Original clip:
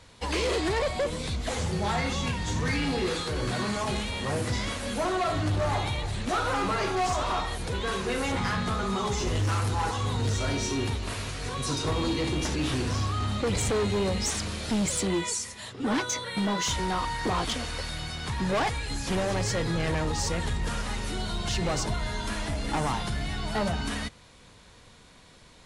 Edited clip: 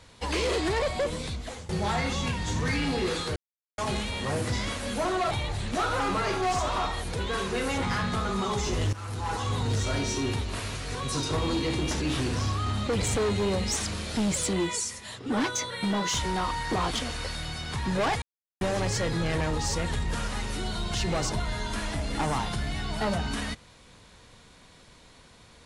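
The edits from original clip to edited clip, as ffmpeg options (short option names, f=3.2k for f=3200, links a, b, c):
-filter_complex "[0:a]asplit=8[a][b][c][d][e][f][g][h];[a]atrim=end=1.69,asetpts=PTS-STARTPTS,afade=t=out:st=1.15:d=0.54:silence=0.125893[i];[b]atrim=start=1.69:end=3.36,asetpts=PTS-STARTPTS,afade=t=in:d=0.004:c=hsin:silence=0.125893,afade=t=out:st=1.666:d=0.004:c=hsin[j];[c]atrim=start=3.36:end=3.78,asetpts=PTS-STARTPTS,volume=0[k];[d]atrim=start=3.78:end=5.312,asetpts=PTS-STARTPTS,afade=t=in:d=0.004:c=hsin[l];[e]atrim=start=5.848:end=9.47,asetpts=PTS-STARTPTS,afade=t=out:st=3.618:d=0.004:c=hsin:silence=0.133352[m];[f]atrim=start=9.47:end=18.76,asetpts=PTS-STARTPTS,afade=t=in:d=0.53:silence=0.133352,afade=t=out:st=9.286:d=0.004:c=hsin[n];[g]atrim=start=18.76:end=19.15,asetpts=PTS-STARTPTS,volume=0[o];[h]atrim=start=19.15,asetpts=PTS-STARTPTS,afade=t=in:d=0.004:c=hsin[p];[i][j][k][l]concat=n=4:v=0:a=1[q];[m][n][o][p]concat=n=4:v=0:a=1[r];[q][r]acrossfade=d=0.004:c1=hsin:c2=hsin"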